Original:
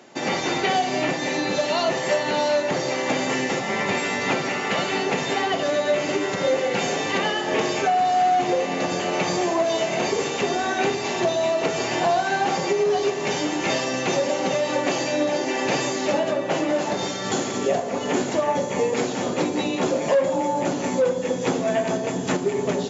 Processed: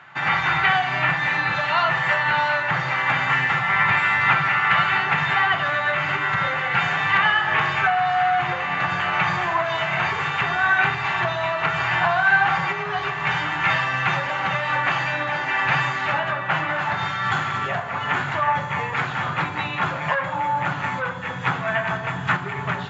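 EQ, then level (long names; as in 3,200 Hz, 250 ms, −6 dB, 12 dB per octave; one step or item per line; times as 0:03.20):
drawn EQ curve 150 Hz 0 dB, 220 Hz −21 dB, 510 Hz −22 dB, 820 Hz −5 dB, 1,400 Hz +6 dB, 3,500 Hz −8 dB, 5,700 Hz −24 dB
+7.5 dB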